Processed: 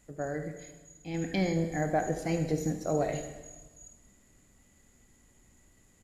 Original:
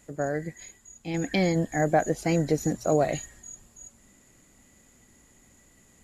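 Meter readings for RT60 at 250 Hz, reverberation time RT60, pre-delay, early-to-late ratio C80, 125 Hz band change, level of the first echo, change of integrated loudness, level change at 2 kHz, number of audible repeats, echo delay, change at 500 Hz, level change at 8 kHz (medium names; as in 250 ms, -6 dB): 1.4 s, 1.3 s, 14 ms, 10.0 dB, -4.0 dB, -14.0 dB, -5.5 dB, -6.0 dB, 1, 73 ms, -6.0 dB, -6.5 dB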